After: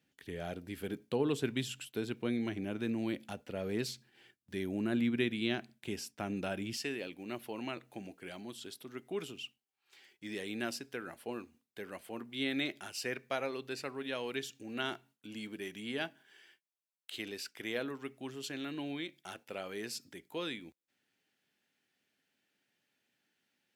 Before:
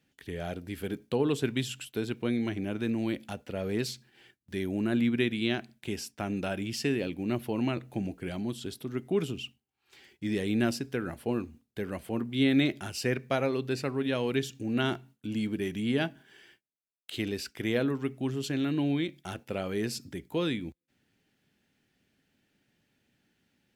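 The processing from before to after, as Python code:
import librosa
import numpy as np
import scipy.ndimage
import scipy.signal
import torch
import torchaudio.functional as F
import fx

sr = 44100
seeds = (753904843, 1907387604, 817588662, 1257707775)

y = fx.highpass(x, sr, hz=fx.steps((0.0, 110.0), (6.77, 650.0)), slope=6)
y = y * 10.0 ** (-4.0 / 20.0)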